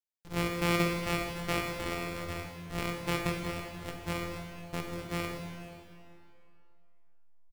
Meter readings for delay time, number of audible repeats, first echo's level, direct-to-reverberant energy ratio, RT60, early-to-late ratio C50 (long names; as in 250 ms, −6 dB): 483 ms, 1, −19.5 dB, 1.0 dB, 2.6 s, 2.5 dB